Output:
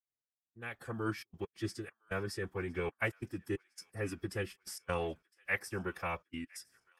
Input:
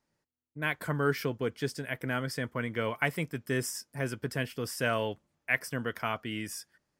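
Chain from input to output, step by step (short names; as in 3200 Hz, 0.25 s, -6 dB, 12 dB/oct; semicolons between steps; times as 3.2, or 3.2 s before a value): opening faded in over 1.60 s; step gate "xx..xxxxxxx.x.x" 135 bpm -60 dB; formant-preserving pitch shift -4.5 st; thin delay 1.01 s, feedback 48%, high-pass 1400 Hz, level -24 dB; gain -4 dB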